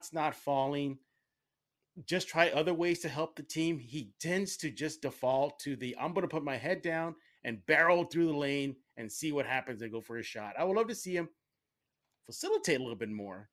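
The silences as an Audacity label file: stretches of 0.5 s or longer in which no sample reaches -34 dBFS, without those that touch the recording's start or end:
0.920000	2.090000	silence
11.250000	12.340000	silence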